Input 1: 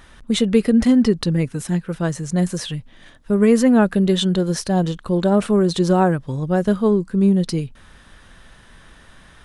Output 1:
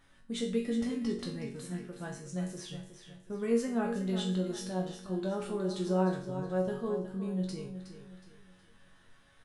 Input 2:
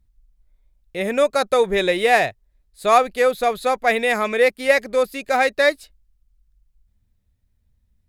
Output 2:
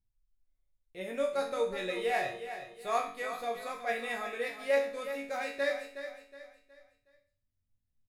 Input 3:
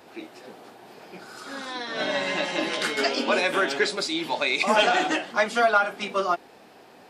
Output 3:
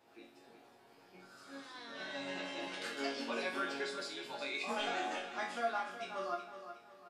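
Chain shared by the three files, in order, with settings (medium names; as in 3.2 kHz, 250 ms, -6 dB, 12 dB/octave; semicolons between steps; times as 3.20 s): chord resonator F#2 major, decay 0.44 s; on a send: feedback delay 367 ms, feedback 37%, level -10.5 dB; on the sum: trim -1.5 dB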